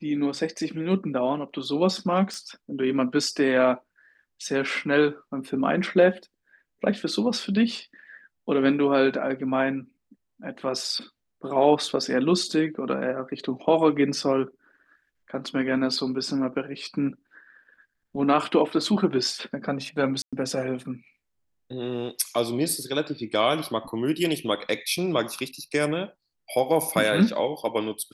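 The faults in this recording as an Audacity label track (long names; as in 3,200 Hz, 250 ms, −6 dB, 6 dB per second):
2.340000	2.340000	click
20.220000	20.330000	drop-out 106 ms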